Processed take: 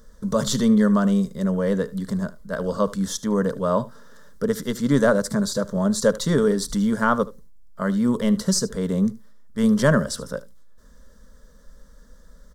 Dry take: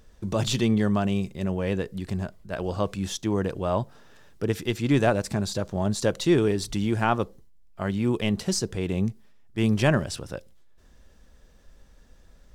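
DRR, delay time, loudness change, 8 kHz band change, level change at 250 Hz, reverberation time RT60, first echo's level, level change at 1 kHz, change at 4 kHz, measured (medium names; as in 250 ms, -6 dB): no reverb, 75 ms, +4.0 dB, +5.5 dB, +5.5 dB, no reverb, -18.5 dB, +3.0 dB, +1.0 dB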